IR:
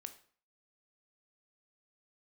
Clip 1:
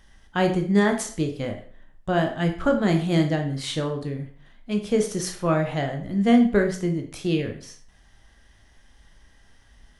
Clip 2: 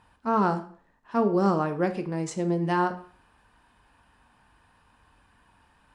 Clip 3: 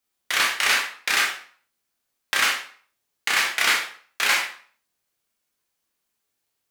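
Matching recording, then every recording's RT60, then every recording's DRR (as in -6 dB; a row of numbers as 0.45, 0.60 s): 2; 0.45, 0.45, 0.45 s; 4.0, 8.5, -1.0 dB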